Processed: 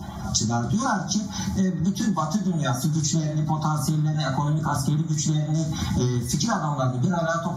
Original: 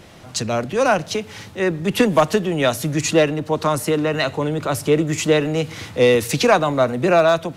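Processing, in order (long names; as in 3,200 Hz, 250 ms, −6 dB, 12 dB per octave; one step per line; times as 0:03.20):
spectral magnitudes quantised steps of 30 dB
phaser with its sweep stopped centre 1,100 Hz, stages 4
convolution reverb, pre-delay 3 ms, DRR −1.5 dB
downward compressor 16 to 1, threshold −24 dBFS, peak gain reduction 19.5 dB
level +4 dB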